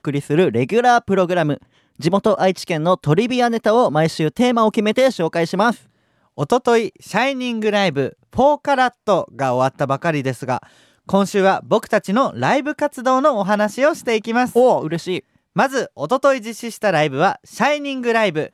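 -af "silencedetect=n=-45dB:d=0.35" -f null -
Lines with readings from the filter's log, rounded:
silence_start: 5.86
silence_end: 6.37 | silence_duration: 0.51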